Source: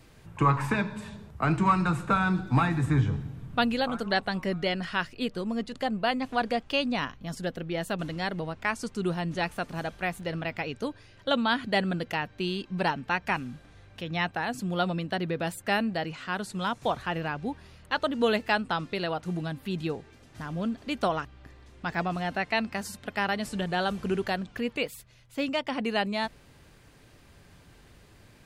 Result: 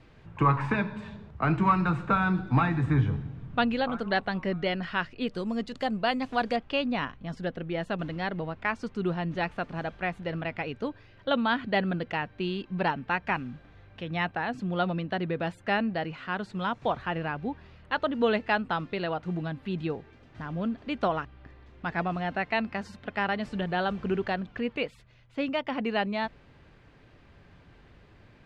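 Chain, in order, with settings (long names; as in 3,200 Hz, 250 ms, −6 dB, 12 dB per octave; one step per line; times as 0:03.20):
low-pass filter 3,300 Hz 12 dB per octave, from 0:05.28 7,000 Hz, from 0:06.56 3,000 Hz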